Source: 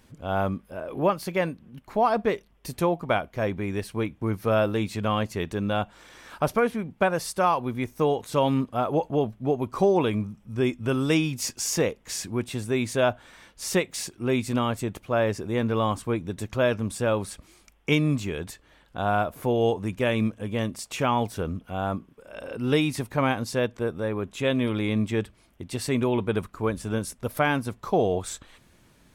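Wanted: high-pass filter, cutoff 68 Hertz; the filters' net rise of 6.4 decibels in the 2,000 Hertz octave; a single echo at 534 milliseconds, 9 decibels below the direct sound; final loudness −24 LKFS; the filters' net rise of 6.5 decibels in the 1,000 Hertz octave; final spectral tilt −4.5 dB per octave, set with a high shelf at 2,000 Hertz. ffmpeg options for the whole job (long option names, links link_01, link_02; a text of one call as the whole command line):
ffmpeg -i in.wav -af "highpass=68,equalizer=frequency=1000:width_type=o:gain=7.5,highshelf=frequency=2000:gain=-3.5,equalizer=frequency=2000:width_type=o:gain=8,aecho=1:1:534:0.355,volume=-0.5dB" out.wav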